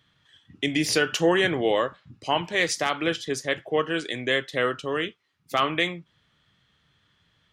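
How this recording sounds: noise floor -68 dBFS; spectral tilt -3.5 dB/octave

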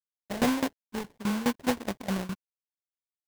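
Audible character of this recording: a quantiser's noise floor 10-bit, dither none; tremolo saw down 4.8 Hz, depth 90%; aliases and images of a low sample rate 1.3 kHz, jitter 20%

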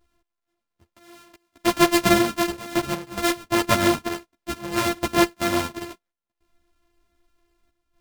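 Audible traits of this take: a buzz of ramps at a fixed pitch in blocks of 128 samples; chopped level 0.63 Hz, depth 60%, duty 85%; a shimmering, thickened sound

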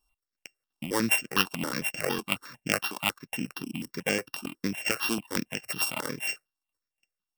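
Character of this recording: a buzz of ramps at a fixed pitch in blocks of 16 samples; tremolo triangle 3 Hz, depth 35%; notches that jump at a steady rate 11 Hz 520–3900 Hz

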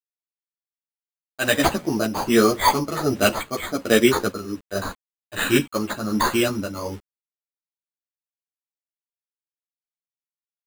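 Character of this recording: a quantiser's noise floor 8-bit, dither none; tremolo triangle 1.3 Hz, depth 70%; aliases and images of a low sample rate 5.5 kHz, jitter 0%; a shimmering, thickened sound

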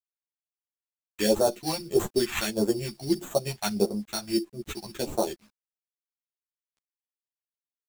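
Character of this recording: aliases and images of a low sample rate 5 kHz, jitter 0%; phasing stages 2, 1.6 Hz, lowest notch 410–2300 Hz; a quantiser's noise floor 10-bit, dither none; a shimmering, thickened sound

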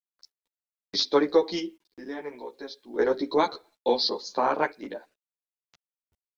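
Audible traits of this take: random-step tremolo 1.7 Hz, depth 85%; a quantiser's noise floor 12-bit, dither none; a shimmering, thickened sound

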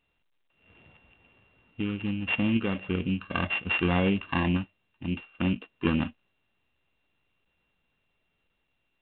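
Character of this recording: a buzz of ramps at a fixed pitch in blocks of 16 samples; random-step tremolo; µ-law

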